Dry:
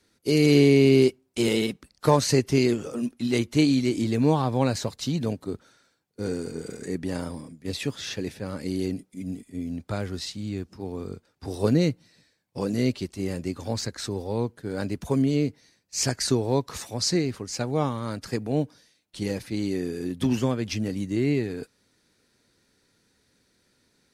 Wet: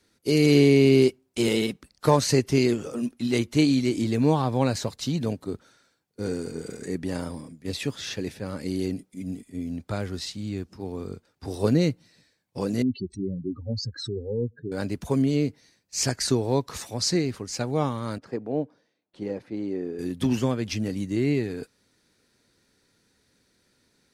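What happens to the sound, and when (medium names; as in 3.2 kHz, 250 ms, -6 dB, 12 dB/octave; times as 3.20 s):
12.82–14.72 s: spectral contrast enhancement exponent 3.3
18.18–19.99 s: band-pass filter 500 Hz, Q 0.72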